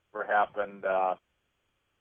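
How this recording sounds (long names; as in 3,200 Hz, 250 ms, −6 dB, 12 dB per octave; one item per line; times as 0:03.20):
background noise floor −78 dBFS
spectral slope +3.0 dB per octave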